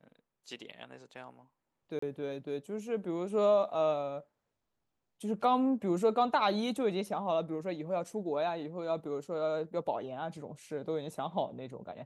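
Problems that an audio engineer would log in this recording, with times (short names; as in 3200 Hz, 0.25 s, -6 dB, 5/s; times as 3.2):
1.99–2.02 gap 34 ms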